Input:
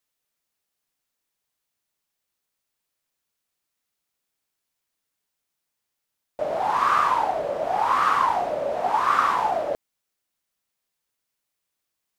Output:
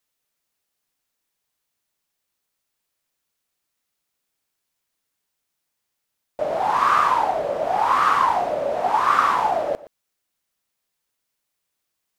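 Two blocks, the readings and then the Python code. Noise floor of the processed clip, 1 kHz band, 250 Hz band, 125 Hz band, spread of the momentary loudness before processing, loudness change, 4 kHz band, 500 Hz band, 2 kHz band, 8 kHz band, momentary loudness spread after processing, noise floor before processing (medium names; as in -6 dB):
-79 dBFS, +2.5 dB, +2.5 dB, +2.5 dB, 8 LU, +2.5 dB, +2.5 dB, +2.5 dB, +2.5 dB, no reading, 8 LU, -82 dBFS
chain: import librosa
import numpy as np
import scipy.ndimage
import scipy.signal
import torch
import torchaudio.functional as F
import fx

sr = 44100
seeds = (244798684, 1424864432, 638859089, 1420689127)

y = x + 10.0 ** (-18.5 / 20.0) * np.pad(x, (int(119 * sr / 1000.0), 0))[:len(x)]
y = F.gain(torch.from_numpy(y), 2.5).numpy()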